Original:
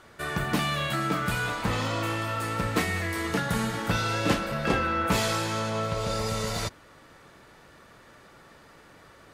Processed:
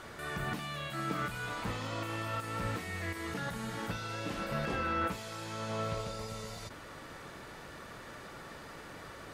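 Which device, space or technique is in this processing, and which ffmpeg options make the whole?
de-esser from a sidechain: -filter_complex "[0:a]asplit=2[link_01][link_02];[link_02]highpass=5200,apad=whole_len=411602[link_03];[link_01][link_03]sidechaincompress=threshold=-56dB:ratio=8:attack=0.62:release=20,volume=5dB"

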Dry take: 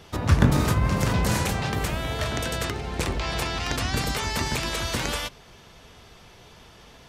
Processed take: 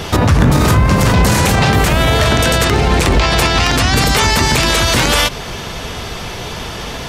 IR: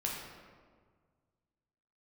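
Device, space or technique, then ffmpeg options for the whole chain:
loud club master: -af "acompressor=threshold=-32dB:ratio=1.5,asoftclip=type=hard:threshold=-15.5dB,alimiter=level_in=26.5dB:limit=-1dB:release=50:level=0:latency=1,volume=-2dB"

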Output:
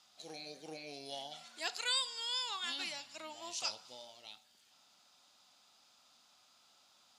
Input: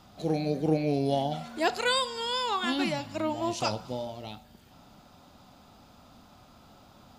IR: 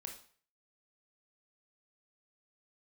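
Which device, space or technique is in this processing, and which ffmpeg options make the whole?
piezo pickup straight into a mixer: -af "lowpass=6900,aderivative,volume=2dB"

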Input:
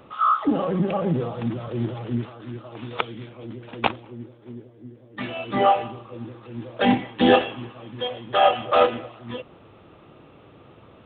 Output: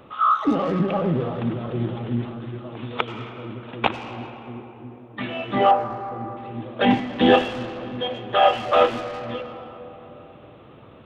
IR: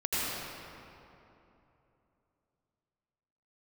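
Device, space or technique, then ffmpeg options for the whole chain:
saturated reverb return: -filter_complex "[0:a]asplit=2[link_01][link_02];[1:a]atrim=start_sample=2205[link_03];[link_02][link_03]afir=irnorm=-1:irlink=0,asoftclip=type=tanh:threshold=-14.5dB,volume=-15dB[link_04];[link_01][link_04]amix=inputs=2:normalize=0,asettb=1/sr,asplit=3[link_05][link_06][link_07];[link_05]atrim=end=5.714[link_08];[link_06]atrim=start=5.71:end=6.37,asetpts=PTS-STARTPTS,afade=type=in:duration=0.004:curve=qsin,afade=type=out:start_time=0.656:duration=0.004:curve=qsin,highshelf=frequency=1900:width_type=q:width=1.5:gain=-10.5[link_09];[link_07]atrim=start=6.366[link_10];[link_08][link_09]acrossfade=duration=0.004:curve1=hsin:curve2=qsin[link_11];[link_11][link_10]acrossfade=duration=0.004:curve1=qsin:curve2=hsin"

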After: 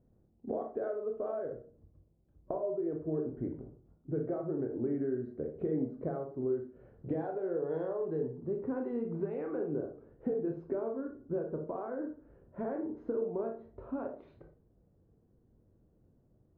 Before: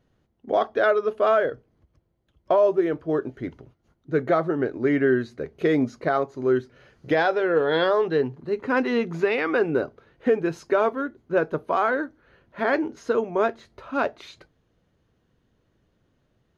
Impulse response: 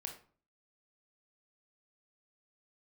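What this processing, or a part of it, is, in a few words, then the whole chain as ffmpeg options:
television next door: -filter_complex "[0:a]acompressor=threshold=-31dB:ratio=5,lowpass=530[link_01];[1:a]atrim=start_sample=2205[link_02];[link_01][link_02]afir=irnorm=-1:irlink=0,volume=3.5dB"

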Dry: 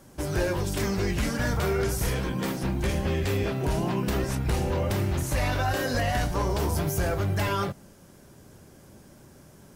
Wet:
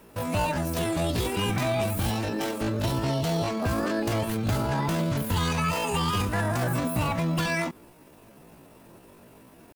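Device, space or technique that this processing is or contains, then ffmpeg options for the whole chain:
chipmunk voice: -af "asetrate=74167,aresample=44100,atempo=0.594604"

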